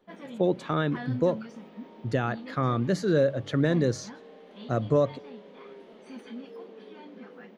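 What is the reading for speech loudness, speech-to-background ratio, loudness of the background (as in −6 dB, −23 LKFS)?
−27.5 LKFS, 16.0 dB, −43.5 LKFS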